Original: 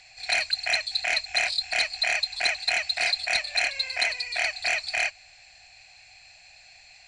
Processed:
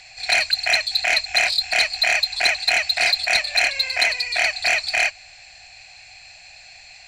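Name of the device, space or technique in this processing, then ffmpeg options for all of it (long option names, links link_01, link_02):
parallel distortion: -filter_complex "[0:a]asplit=2[link_01][link_02];[link_02]asoftclip=type=hard:threshold=-26.5dB,volume=-9.5dB[link_03];[link_01][link_03]amix=inputs=2:normalize=0,volume=5dB"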